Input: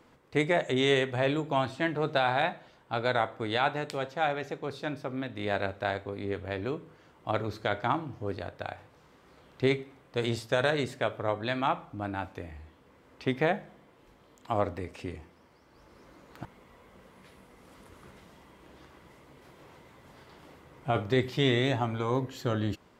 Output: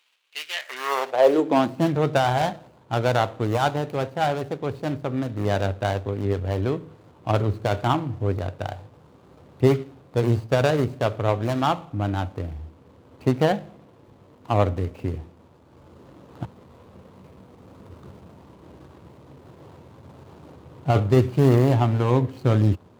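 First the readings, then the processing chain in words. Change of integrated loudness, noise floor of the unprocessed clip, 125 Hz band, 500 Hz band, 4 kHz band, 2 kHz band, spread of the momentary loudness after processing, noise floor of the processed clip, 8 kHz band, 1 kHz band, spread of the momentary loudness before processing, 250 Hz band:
+7.0 dB, -60 dBFS, +12.5 dB, +6.5 dB, +1.0 dB, 0.0 dB, 13 LU, -53 dBFS, +7.5 dB, +6.0 dB, 14 LU, +8.0 dB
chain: median filter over 25 samples; high-pass sweep 2700 Hz -> 91 Hz, 0.49–2.02; gain +7.5 dB

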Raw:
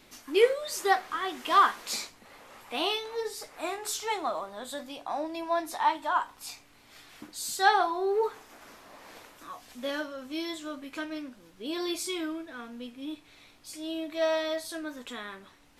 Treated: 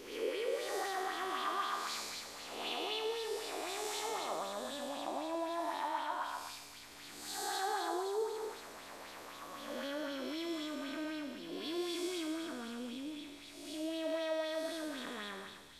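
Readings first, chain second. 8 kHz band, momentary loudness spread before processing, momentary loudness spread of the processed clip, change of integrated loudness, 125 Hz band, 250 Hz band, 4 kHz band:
-6.5 dB, 21 LU, 11 LU, -9.0 dB, n/a, -4.5 dB, -5.5 dB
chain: time blur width 0.365 s; compressor 3:1, threshold -38 dBFS, peak gain reduction 8.5 dB; thin delay 0.145 s, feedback 84%, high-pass 3400 Hz, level -9 dB; LFO bell 3.9 Hz 390–4000 Hz +7 dB

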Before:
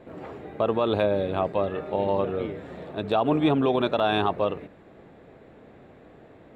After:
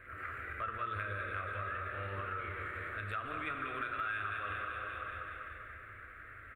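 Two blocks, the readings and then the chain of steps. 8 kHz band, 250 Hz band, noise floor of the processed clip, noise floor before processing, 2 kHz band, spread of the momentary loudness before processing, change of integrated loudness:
n/a, -25.5 dB, -52 dBFS, -51 dBFS, +0.5 dB, 15 LU, -14.0 dB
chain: feedback echo 0.192 s, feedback 59%, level -9 dB; transient shaper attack -6 dB, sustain +5 dB; EQ curve 100 Hz 0 dB, 160 Hz -24 dB, 240 Hz -20 dB, 590 Hz -16 dB, 890 Hz -25 dB, 1300 Hz +11 dB, 2200 Hz +6 dB, 3500 Hz -11 dB, 6100 Hz -18 dB, 9000 Hz +4 dB; plate-style reverb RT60 2.3 s, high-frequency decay 0.85×, DRR 3.5 dB; compressor 4:1, threshold -39 dBFS, peak gain reduction 17 dB; gain +1 dB

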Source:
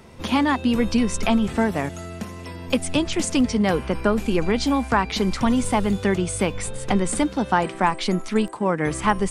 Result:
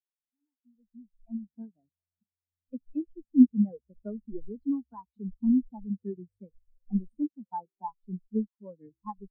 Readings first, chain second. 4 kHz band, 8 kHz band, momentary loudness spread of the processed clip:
under -40 dB, under -40 dB, 21 LU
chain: opening faded in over 2.20 s; spectral expander 4:1; gain -3.5 dB

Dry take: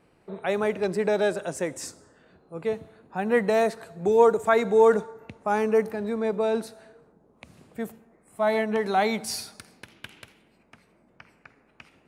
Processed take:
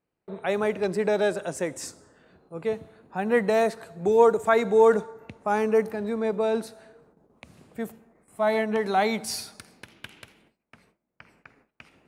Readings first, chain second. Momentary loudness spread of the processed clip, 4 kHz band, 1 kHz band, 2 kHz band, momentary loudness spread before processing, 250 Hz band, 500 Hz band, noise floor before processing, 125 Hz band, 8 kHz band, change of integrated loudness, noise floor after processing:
18 LU, 0.0 dB, 0.0 dB, 0.0 dB, 18 LU, 0.0 dB, 0.0 dB, -63 dBFS, 0.0 dB, 0.0 dB, 0.0 dB, -82 dBFS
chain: gate with hold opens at -49 dBFS

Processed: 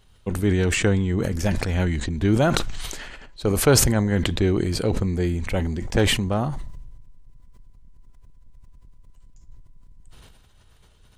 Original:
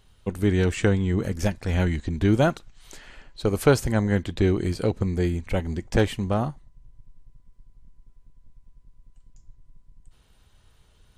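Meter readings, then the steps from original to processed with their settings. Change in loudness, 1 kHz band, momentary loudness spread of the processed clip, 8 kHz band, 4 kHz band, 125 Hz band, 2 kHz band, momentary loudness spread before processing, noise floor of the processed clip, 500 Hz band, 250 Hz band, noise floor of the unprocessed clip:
+2.0 dB, +1.5 dB, 13 LU, +12.5 dB, +9.5 dB, +1.5 dB, +3.5 dB, 7 LU, -54 dBFS, +1.0 dB, +1.5 dB, -60 dBFS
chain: sustainer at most 32 dB/s

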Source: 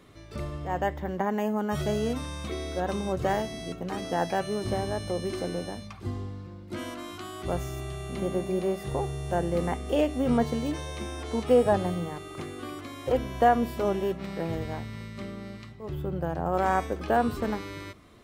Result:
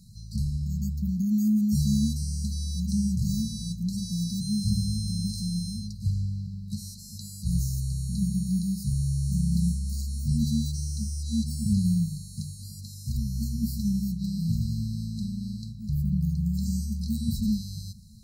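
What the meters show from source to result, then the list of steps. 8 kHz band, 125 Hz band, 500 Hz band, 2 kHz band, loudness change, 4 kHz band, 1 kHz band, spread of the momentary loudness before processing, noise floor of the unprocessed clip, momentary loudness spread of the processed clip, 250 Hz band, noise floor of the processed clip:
+8.0 dB, +8.0 dB, under -40 dB, under -40 dB, +1.0 dB, +2.0 dB, under -40 dB, 13 LU, -44 dBFS, 11 LU, +4.0 dB, -42 dBFS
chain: FFT band-reject 230–3900 Hz; gain +8 dB

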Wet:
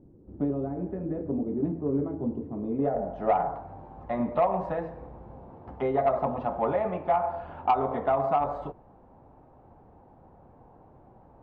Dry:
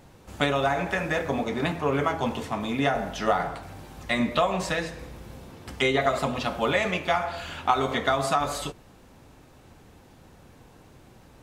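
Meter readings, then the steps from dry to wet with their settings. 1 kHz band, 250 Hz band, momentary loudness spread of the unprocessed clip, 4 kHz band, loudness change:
-1.0 dB, -0.5 dB, 15 LU, under -20 dB, -2.5 dB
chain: low-pass sweep 330 Hz -> 830 Hz, 2.47–3.37; soft clip -9.5 dBFS, distortion -21 dB; gain -4 dB

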